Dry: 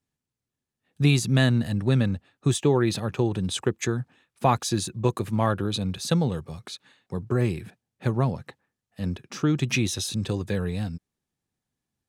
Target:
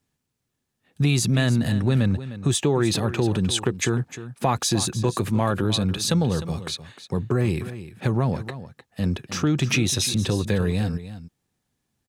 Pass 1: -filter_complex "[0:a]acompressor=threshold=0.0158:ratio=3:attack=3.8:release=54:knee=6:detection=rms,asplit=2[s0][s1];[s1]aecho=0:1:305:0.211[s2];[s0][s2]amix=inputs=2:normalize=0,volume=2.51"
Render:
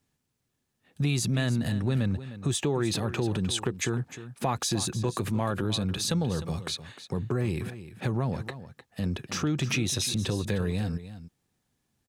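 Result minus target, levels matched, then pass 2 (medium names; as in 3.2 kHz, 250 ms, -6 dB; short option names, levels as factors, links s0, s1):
compression: peak gain reduction +6.5 dB
-filter_complex "[0:a]acompressor=threshold=0.0473:ratio=3:attack=3.8:release=54:knee=6:detection=rms,asplit=2[s0][s1];[s1]aecho=0:1:305:0.211[s2];[s0][s2]amix=inputs=2:normalize=0,volume=2.51"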